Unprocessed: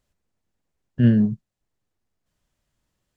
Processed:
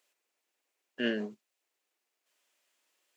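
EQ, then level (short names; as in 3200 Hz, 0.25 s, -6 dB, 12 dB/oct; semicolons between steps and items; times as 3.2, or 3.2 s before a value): HPF 340 Hz 24 dB/oct; tilt +1.5 dB/oct; bell 2500 Hz +6 dB 0.65 oct; 0.0 dB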